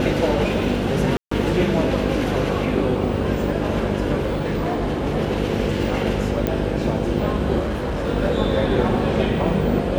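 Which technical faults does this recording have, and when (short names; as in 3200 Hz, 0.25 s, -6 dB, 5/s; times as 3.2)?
buzz 50 Hz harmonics 11 -25 dBFS
1.17–1.31 gap 0.144 s
4.21–5.17 clipped -18 dBFS
6.47 pop -9 dBFS
7.59–8.08 clipped -20.5 dBFS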